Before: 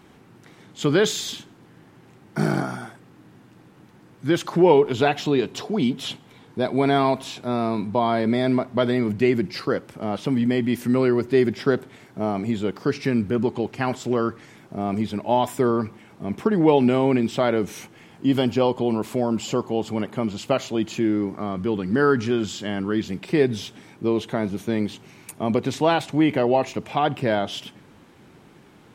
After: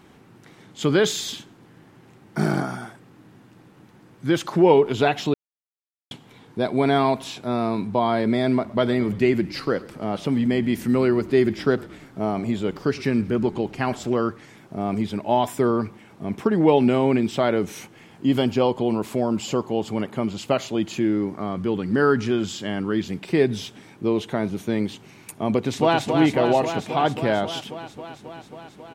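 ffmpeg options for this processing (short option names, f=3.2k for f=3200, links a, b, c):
-filter_complex "[0:a]asettb=1/sr,asplit=3[a][b][c];[a]atrim=end=8.534[d];[b]atrim=start=8.53:end=14.1,asetpts=PTS-STARTPTS,afade=t=in:d=0.004:c=qsin,afade=t=out:st=5.566:d=0.004:c=qsin,asplit=6[e][f][g][h][i][j];[f]adelay=112,afreqshift=-37,volume=-20.5dB[k];[g]adelay=224,afreqshift=-74,volume=-25.2dB[l];[h]adelay=336,afreqshift=-111,volume=-30dB[m];[i]adelay=448,afreqshift=-148,volume=-34.7dB[n];[j]adelay=560,afreqshift=-185,volume=-39.4dB[o];[e][k][l][m][n][o]amix=inputs=6:normalize=0,atrim=end_sample=245637[p];[c]atrim=start=14.096[q];[d][p]acrossfade=d=0.004:c1=hsin:c2=qsin[r];[r][q]acrossfade=d=0.004:c1=qsin:c2=hsin,asplit=2[s][t];[t]afade=t=in:st=25.52:d=0.01,afade=t=out:st=26.06:d=0.01,aecho=0:1:270|540|810|1080|1350|1620|1890|2160|2430|2700|2970|3240:0.530884|0.424708|0.339766|0.271813|0.21745|0.17396|0.139168|0.111335|0.0890676|0.0712541|0.0570033|0.0456026[u];[s][u]amix=inputs=2:normalize=0,asplit=3[v][w][x];[v]atrim=end=5.34,asetpts=PTS-STARTPTS,afade=t=out:st=5.336:d=0.004:c=hsin[y];[w]atrim=start=5.34:end=6.11,asetpts=PTS-STARTPTS,volume=0[z];[x]atrim=start=6.11,asetpts=PTS-STARTPTS,afade=t=in:d=0.004:c=hsin[aa];[y][z][aa]concat=n=3:v=0:a=1"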